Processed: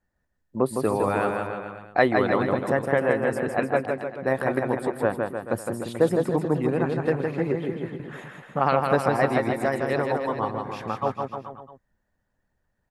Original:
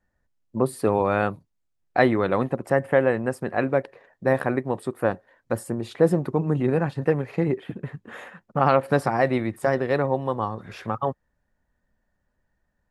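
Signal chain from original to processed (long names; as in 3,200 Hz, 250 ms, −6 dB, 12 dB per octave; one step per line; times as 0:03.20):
bouncing-ball delay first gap 160 ms, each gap 0.9×, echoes 5
harmonic and percussive parts rebalanced harmonic −6 dB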